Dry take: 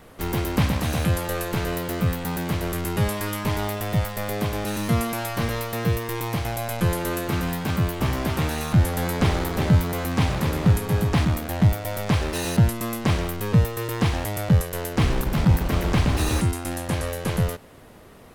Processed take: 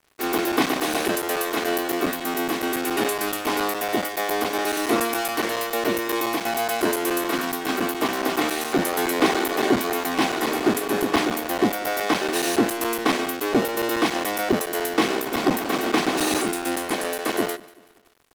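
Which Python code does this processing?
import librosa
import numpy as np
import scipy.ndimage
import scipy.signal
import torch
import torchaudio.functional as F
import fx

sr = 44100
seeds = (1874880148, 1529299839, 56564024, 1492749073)

p1 = fx.lower_of_two(x, sr, delay_ms=2.7)
p2 = scipy.signal.sosfilt(scipy.signal.butter(4, 230.0, 'highpass', fs=sr, output='sos'), p1)
p3 = np.sign(p2) * np.maximum(np.abs(p2) - 10.0 ** (-45.5 / 20.0), 0.0)
p4 = p3 + fx.echo_feedback(p3, sr, ms=190, feedback_pct=44, wet_db=-21.5, dry=0)
p5 = fx.buffer_crackle(p4, sr, first_s=0.38, period_s=0.14, block=256, kind='zero')
y = F.gain(torch.from_numpy(p5), 6.0).numpy()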